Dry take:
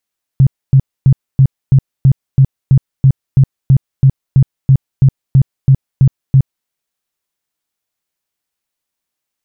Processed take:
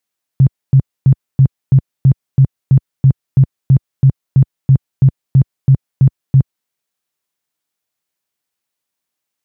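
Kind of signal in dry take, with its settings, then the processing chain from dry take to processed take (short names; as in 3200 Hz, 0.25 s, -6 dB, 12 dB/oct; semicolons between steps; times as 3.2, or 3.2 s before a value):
tone bursts 134 Hz, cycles 9, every 0.33 s, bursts 19, -3 dBFS
HPF 80 Hz 12 dB/oct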